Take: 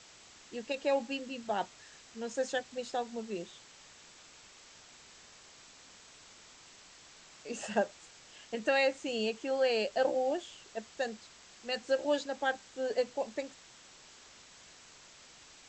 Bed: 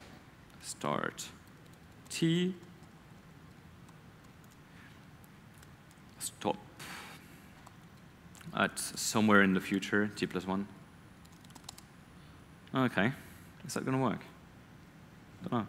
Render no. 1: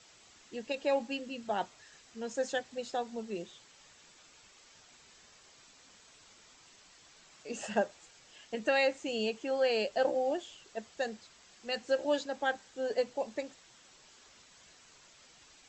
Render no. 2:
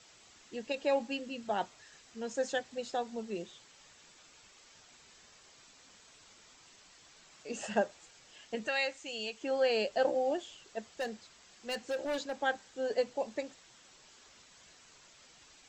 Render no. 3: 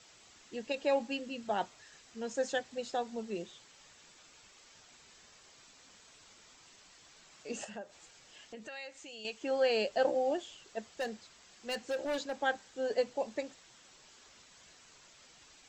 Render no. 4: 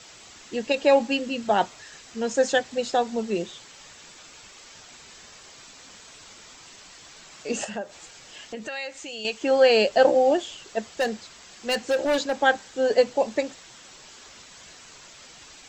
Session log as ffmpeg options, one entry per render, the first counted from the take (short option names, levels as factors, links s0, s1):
-af "afftdn=nr=6:nf=-57"
-filter_complex "[0:a]asettb=1/sr,asplit=3[s0][s1][s2];[s0]atrim=end=8.674[s3];[s1]atrim=start=8.67:end=9.41,asetpts=PTS-STARTPTS,afade=t=in:d=0.004:c=qsin,afade=t=out:st=0.736:d=0.004:c=qsin,equalizer=f=250:w=0.33:g=-11.5[s4];[s2]atrim=start=9.406[s5];[s3][s4]acrossfade=d=0.004:c1=hsin:c2=qsin[s6];[s6][s5]acrossfade=d=0.004:c1=qsin:c2=hsin,asettb=1/sr,asplit=3[s7][s8][s9];[s7]atrim=end=10.944[s10];[s8]atrim=start=10.94:end=12.34,asetpts=PTS-STARTPTS,afade=t=in:d=0.004:c=qsin,afade=t=out:st=1.396:d=0.004:c=qsin,volume=35.5,asoftclip=hard,volume=0.0282[s11];[s9]atrim=start=12.336[s12];[s10][s11]acrossfade=d=0.004:c1=hsin:c2=qsin[s13];[s13][s12]acrossfade=d=0.004:c1=qsin:c2=hsin"
-filter_complex "[0:a]asettb=1/sr,asplit=3[s0][s1][s2];[s0]atrim=end=7.644[s3];[s1]atrim=start=7.64:end=9.25,asetpts=PTS-STARTPTS,afade=t=in:d=0.004:c=qsin,afade=t=out:st=1.606:d=0.004:c=qsin,acompressor=threshold=0.00398:ratio=2.5:attack=3.2:release=140:knee=1:detection=peak[s4];[s2]atrim=start=9.246[s5];[s3][s4]acrossfade=d=0.004:c1=hsin:c2=qsin[s6];[s6][s5]acrossfade=d=0.004:c1=qsin:c2=hsin"
-af "volume=3.98"